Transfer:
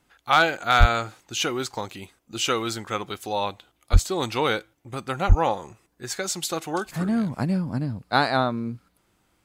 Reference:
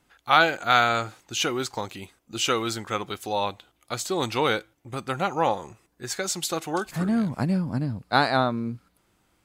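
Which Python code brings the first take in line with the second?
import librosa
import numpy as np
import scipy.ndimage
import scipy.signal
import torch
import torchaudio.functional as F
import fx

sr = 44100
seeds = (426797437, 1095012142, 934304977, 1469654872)

y = fx.fix_declip(x, sr, threshold_db=-6.5)
y = fx.fix_deplosive(y, sr, at_s=(0.79, 3.92, 5.28))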